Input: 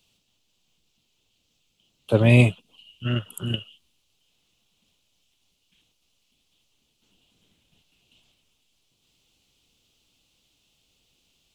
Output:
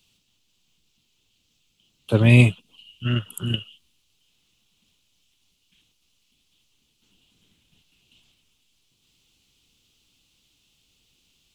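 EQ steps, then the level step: bell 620 Hz -7 dB 1.1 oct; +2.5 dB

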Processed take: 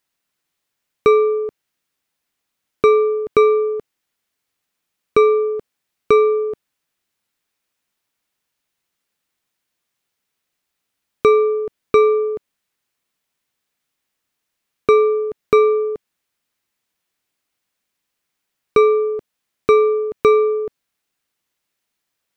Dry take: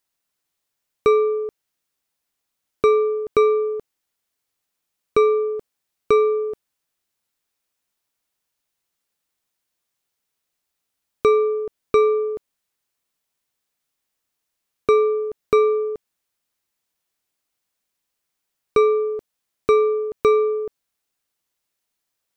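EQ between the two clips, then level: bell 200 Hz +5 dB 2.4 oct; bell 2100 Hz +5 dB 2.1 oct; 0.0 dB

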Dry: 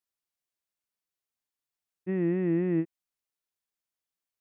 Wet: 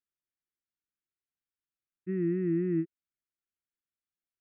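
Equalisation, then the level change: elliptic band-stop 380–1300 Hz, stop band 40 dB; air absorption 470 m; -1.0 dB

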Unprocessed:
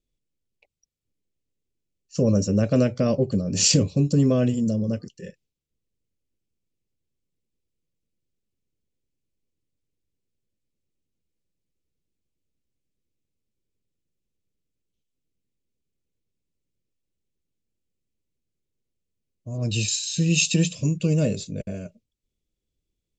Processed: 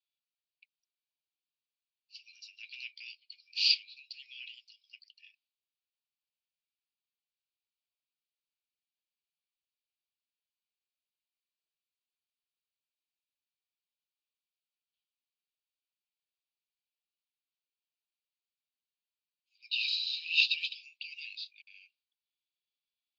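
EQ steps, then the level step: Chebyshev band-pass 2300–4800 Hz, order 4; 0.0 dB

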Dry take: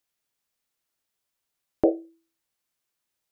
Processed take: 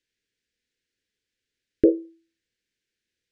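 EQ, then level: elliptic band-stop 490–1600 Hz; air absorption 110 m; bell 150 Hz -8.5 dB 0.23 oct; +6.0 dB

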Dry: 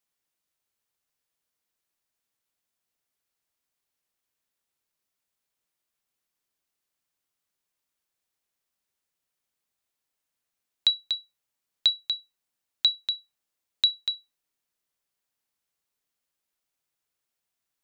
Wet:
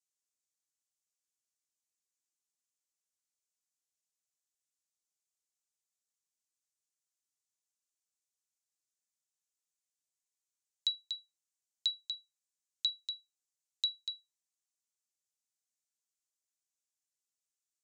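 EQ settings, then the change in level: band-pass 7000 Hz, Q 2.4; 0.0 dB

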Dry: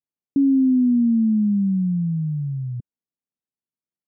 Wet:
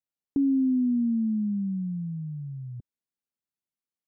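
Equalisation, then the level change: dynamic EQ 150 Hz, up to -7 dB, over -35 dBFS, Q 0.95; -3.5 dB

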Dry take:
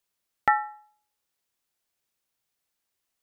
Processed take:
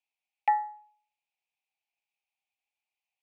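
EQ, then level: double band-pass 1400 Hz, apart 1.6 oct; tilt +2 dB/oct; +2.0 dB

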